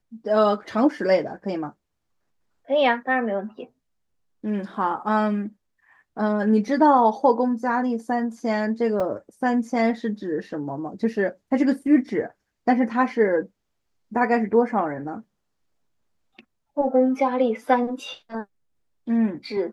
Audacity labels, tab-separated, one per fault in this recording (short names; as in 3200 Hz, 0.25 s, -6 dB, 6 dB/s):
9.000000	9.000000	gap 3.6 ms